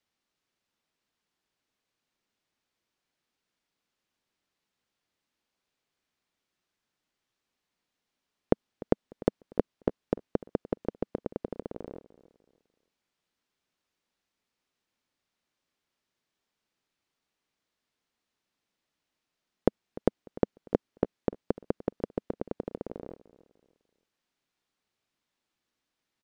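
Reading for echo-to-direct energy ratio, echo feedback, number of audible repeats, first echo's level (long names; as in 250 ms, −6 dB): −18.5 dB, 34%, 2, −19.0 dB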